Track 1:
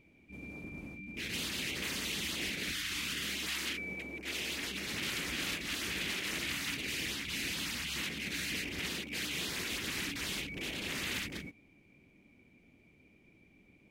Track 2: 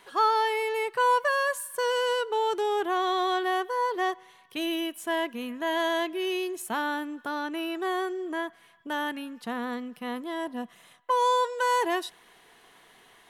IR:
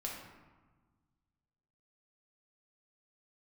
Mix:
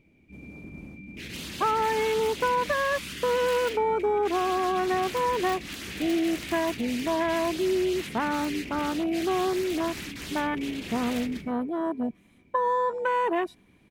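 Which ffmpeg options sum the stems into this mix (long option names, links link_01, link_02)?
-filter_complex "[0:a]aeval=exprs='(mod(21.1*val(0)+1,2)-1)/21.1':channel_layout=same,volume=-3.5dB,asplit=2[link_01][link_02];[link_02]volume=-9dB[link_03];[1:a]afwtdn=0.0316,acompressor=threshold=-26dB:ratio=4,adelay=1450,volume=2dB[link_04];[2:a]atrim=start_sample=2205[link_05];[link_03][link_05]afir=irnorm=-1:irlink=0[link_06];[link_01][link_04][link_06]amix=inputs=3:normalize=0,lowshelf=frequency=460:gain=6"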